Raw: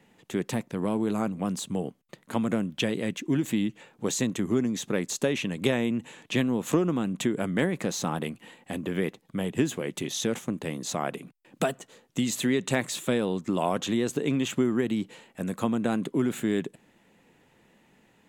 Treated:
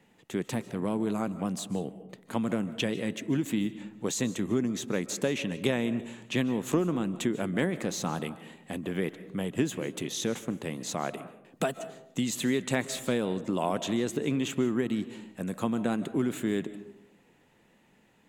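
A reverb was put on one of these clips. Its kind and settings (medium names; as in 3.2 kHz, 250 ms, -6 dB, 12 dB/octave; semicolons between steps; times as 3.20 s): algorithmic reverb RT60 0.82 s, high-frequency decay 0.35×, pre-delay 110 ms, DRR 14 dB; trim -2.5 dB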